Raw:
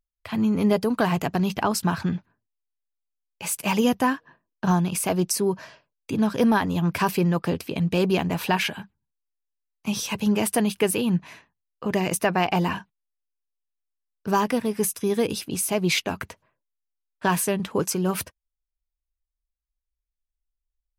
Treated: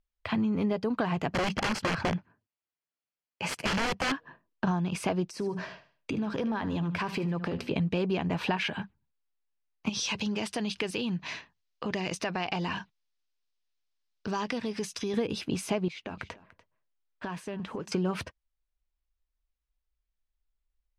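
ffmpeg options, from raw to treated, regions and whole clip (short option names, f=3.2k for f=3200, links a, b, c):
-filter_complex "[0:a]asettb=1/sr,asplit=3[a][b][c];[a]atrim=end=1.314[d];[b]atrim=start=1.31:end=4.12,asetpts=PTS-STARTPTS,afade=t=in:d=0.004:c=qsin,afade=t=out:st=2.806:d=0.004:c=qsin,highpass=61,aeval=exprs='(mod(10*val(0)+1,2)-1)/10':c=same,bandreject=f=3.7k:w=7.9[e];[c]atrim=start=4.116[f];[d][e]acrossfade=d=0.004:c1=hsin:c2=qsin[g];[g][f]acrossfade=d=0.004:c1=qsin:c2=hsin,asettb=1/sr,asplit=3[h][i][j];[h]atrim=end=5.274[k];[i]atrim=start=5.27:end=7.7,asetpts=PTS-STARTPTS,afade=t=in:d=0.004:c=qsin,afade=t=out:st=2.426:d=0.004:c=qsin,bandreject=f=60:t=h:w=6,bandreject=f=120:t=h:w=6,bandreject=f=180:t=h:w=6,bandreject=f=240:t=h:w=6,acompressor=threshold=-30dB:ratio=6:attack=3.2:release=140:knee=1:detection=peak,aecho=1:1:75|150|225:0.178|0.0658|0.0243,atrim=end_sample=107163[l];[j]atrim=start=7.696[m];[k][l]acrossfade=d=0.004:c1=hsin:c2=qsin[n];[n][m]acrossfade=d=0.004:c1=qsin:c2=hsin,asettb=1/sr,asplit=3[o][p][q];[o]atrim=end=9.894[r];[p]atrim=start=9.89:end=15.14,asetpts=PTS-STARTPTS,afade=t=in:d=0.004:c=qsin,afade=t=out:st=5.246:d=0.004:c=qsin,acompressor=threshold=-37dB:ratio=2.5:attack=3.2:release=140:knee=1:detection=peak,equalizer=f=5.2k:t=o:w=1.8:g=12[s];[q]atrim=start=15.136[t];[r][s]acrossfade=d=0.004:c1=hsin:c2=qsin[u];[u][t]acrossfade=d=0.004:c1=qsin:c2=hsin,asettb=1/sr,asplit=3[v][w][x];[v]atrim=end=15.884[y];[w]atrim=start=15.88:end=17.92,asetpts=PTS-STARTPTS,afade=t=in:d=0.004:c=qsin,afade=t=out:st=2.036:d=0.004:c=qsin,acompressor=threshold=-36dB:ratio=8:attack=3.2:release=140:knee=1:detection=peak,aecho=1:1:292:0.112,atrim=end_sample=89964[z];[x]atrim=start=17.916[aa];[y][z]acrossfade=d=0.004:c1=hsin:c2=qsin[ab];[ab][aa]acrossfade=d=0.004:c1=qsin:c2=hsin,lowpass=4k,acompressor=threshold=-29dB:ratio=6,volume=3dB"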